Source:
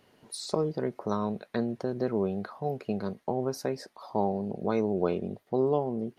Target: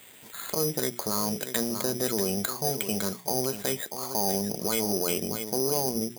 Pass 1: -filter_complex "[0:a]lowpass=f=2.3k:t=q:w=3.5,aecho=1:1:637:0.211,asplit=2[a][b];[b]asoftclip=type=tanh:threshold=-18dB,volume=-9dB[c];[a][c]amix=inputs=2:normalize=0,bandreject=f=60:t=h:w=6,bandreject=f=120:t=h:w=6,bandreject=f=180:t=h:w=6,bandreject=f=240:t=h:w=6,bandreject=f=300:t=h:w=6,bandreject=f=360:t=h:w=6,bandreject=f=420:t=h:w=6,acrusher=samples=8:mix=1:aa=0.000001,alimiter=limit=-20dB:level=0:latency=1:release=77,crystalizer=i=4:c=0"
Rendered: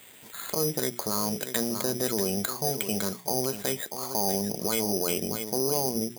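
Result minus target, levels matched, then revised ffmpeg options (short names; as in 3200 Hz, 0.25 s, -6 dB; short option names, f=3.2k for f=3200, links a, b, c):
soft clip: distortion -10 dB
-filter_complex "[0:a]lowpass=f=2.3k:t=q:w=3.5,aecho=1:1:637:0.211,asplit=2[a][b];[b]asoftclip=type=tanh:threshold=-27.5dB,volume=-9dB[c];[a][c]amix=inputs=2:normalize=0,bandreject=f=60:t=h:w=6,bandreject=f=120:t=h:w=6,bandreject=f=180:t=h:w=6,bandreject=f=240:t=h:w=6,bandreject=f=300:t=h:w=6,bandreject=f=360:t=h:w=6,bandreject=f=420:t=h:w=6,acrusher=samples=8:mix=1:aa=0.000001,alimiter=limit=-20dB:level=0:latency=1:release=77,crystalizer=i=4:c=0"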